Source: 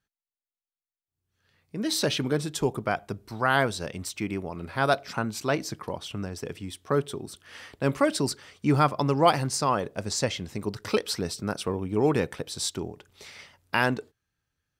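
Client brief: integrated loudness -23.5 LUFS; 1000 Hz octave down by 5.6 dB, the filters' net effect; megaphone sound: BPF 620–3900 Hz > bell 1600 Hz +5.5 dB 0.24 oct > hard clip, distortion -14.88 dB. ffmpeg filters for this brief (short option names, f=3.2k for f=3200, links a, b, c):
-af "highpass=620,lowpass=3.9k,equalizer=f=1k:t=o:g=-7,equalizer=f=1.6k:t=o:w=0.24:g=5.5,asoftclip=type=hard:threshold=-19.5dB,volume=10dB"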